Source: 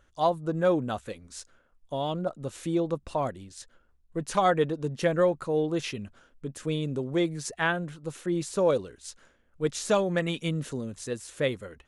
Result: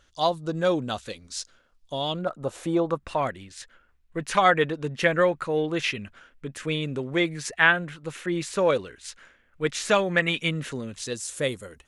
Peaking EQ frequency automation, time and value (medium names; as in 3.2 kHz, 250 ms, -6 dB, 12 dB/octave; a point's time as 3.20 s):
peaking EQ +12 dB 1.7 oct
2.09 s 4.5 kHz
2.53 s 610 Hz
3.16 s 2.1 kHz
10.87 s 2.1 kHz
11.33 s 9.3 kHz